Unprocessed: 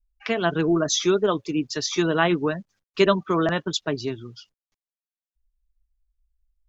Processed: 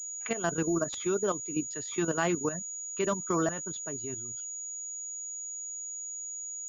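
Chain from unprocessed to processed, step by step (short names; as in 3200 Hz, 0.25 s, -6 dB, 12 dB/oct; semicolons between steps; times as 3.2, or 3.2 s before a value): level quantiser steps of 11 dB; pulse-width modulation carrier 6800 Hz; gain -5 dB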